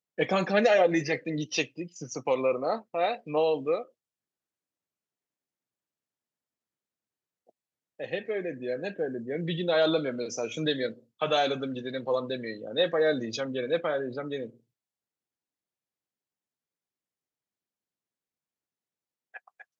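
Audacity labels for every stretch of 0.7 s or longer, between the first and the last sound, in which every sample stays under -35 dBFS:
3.820000	8.000000	silence
14.460000	19.350000	silence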